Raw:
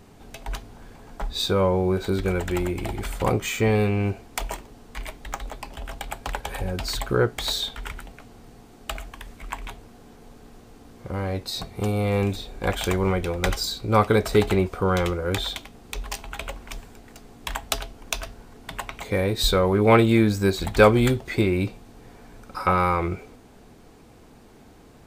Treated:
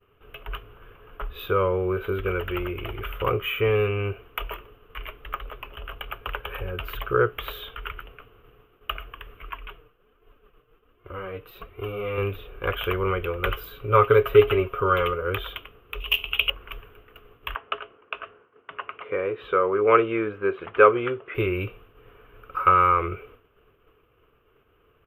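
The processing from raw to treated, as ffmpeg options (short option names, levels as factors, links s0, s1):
-filter_complex "[0:a]asettb=1/sr,asplit=3[s0][s1][s2];[s0]atrim=end=9.494[s3];[s1]atrim=start=9.49:end=12.18,asetpts=PTS-STARTPTS,afade=t=in:d=0.004:c=qsin,afade=t=out:st=2.686:d=0.004:c=qsin,flanger=delay=2.8:depth=3.9:regen=1:speed=1.3:shape=sinusoidal[s4];[s2]atrim=start=12.176[s5];[s3][s4]acrossfade=d=0.004:c1=hsin:c2=qsin[s6];[s6][s5]acrossfade=d=0.004:c1=qsin:c2=hsin,asettb=1/sr,asplit=3[s7][s8][s9];[s7]atrim=end=13.734[s10];[s8]atrim=start=13.73:end=15.22,asetpts=PTS-STARTPTS,afade=t=in:d=0.004:c=qsin,afade=t=out:st=1.486:d=0.004:c=qsin,aecho=1:1:7.3:0.6,atrim=end_sample=65709[s11];[s9]atrim=start=15.216[s12];[s10][s11]acrossfade=d=0.004:c1=hsin:c2=qsin[s13];[s13][s12]acrossfade=d=0.004:c1=qsin:c2=hsin,asettb=1/sr,asplit=3[s14][s15][s16];[s14]atrim=end=16.004[s17];[s15]atrim=start=16:end=16.5,asetpts=PTS-STARTPTS,afade=t=in:d=0.004:c=qsin,afade=t=out:st=0.496:d=0.004:c=qsin,highshelf=f=2100:t=q:w=3:g=9.5[s18];[s16]atrim=start=16.496[s19];[s17][s18]acrossfade=d=0.004:c1=hsin:c2=qsin[s20];[s20][s19]acrossfade=d=0.004:c1=qsin:c2=hsin,asplit=3[s21][s22][s23];[s21]afade=t=out:st=17.54:d=0.02[s24];[s22]highpass=230,lowpass=2100,afade=t=in:st=17.54:d=0.02,afade=t=out:st=21.34:d=0.02[s25];[s23]afade=t=in:st=21.34:d=0.02[s26];[s24][s25][s26]amix=inputs=3:normalize=0,firequalizer=gain_entry='entry(110,0);entry(220,-13);entry(420,6);entry(800,-9);entry(1200,11);entry(1900,-1);entry(2900,10);entry(4300,-27);entry(8600,-27);entry(13000,3)':delay=0.05:min_phase=1,agate=range=0.0224:threshold=0.00794:ratio=3:detection=peak,volume=0.668"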